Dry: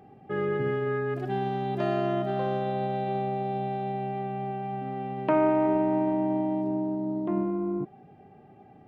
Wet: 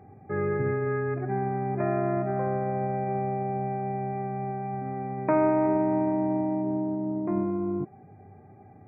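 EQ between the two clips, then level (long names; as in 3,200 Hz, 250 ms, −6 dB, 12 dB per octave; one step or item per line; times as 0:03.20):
linear-phase brick-wall low-pass 2,500 Hz
parametric band 95 Hz +15 dB 0.4 octaves
0.0 dB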